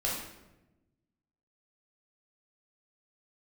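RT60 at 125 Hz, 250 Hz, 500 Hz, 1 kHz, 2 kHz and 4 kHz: 1.7, 1.5, 1.1, 0.90, 0.80, 0.65 seconds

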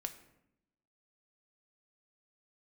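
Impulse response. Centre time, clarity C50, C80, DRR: 9 ms, 12.5 dB, 14.5 dB, 7.0 dB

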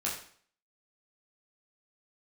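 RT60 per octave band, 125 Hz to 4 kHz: 0.55, 0.55, 0.50, 0.55, 0.50, 0.50 seconds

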